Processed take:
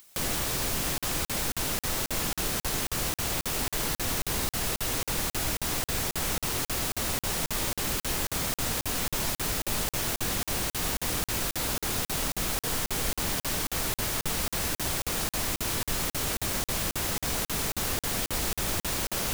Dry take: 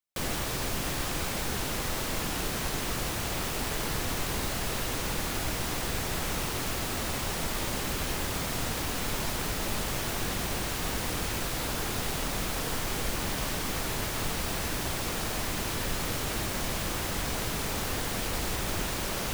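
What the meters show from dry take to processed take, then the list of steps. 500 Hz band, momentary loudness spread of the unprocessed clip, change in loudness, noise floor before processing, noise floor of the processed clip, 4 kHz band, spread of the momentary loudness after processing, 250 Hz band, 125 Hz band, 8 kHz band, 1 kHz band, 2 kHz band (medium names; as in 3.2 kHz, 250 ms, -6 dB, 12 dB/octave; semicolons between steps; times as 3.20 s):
-0.5 dB, 0 LU, +2.5 dB, -33 dBFS, under -85 dBFS, +2.0 dB, 1 LU, -0.5 dB, -1.0 dB, +4.0 dB, -0.5 dB, 0.0 dB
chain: treble shelf 4.7 kHz +6.5 dB; upward compressor, threshold -33 dBFS; crackling interface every 0.27 s, samples 2048, zero, from 0.98 s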